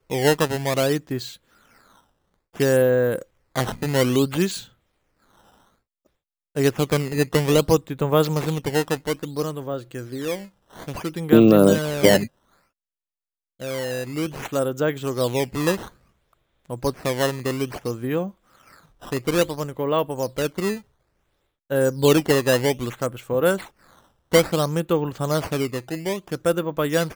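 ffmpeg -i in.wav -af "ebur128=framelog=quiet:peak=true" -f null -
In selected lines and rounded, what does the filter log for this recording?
Integrated loudness:
  I:         -22.3 LUFS
  Threshold: -33.3 LUFS
Loudness range:
  LRA:         6.6 LU
  Threshold: -43.5 LUFS
  LRA low:   -26.7 LUFS
  LRA high:  -20.1 LUFS
True peak:
  Peak:       -2.0 dBFS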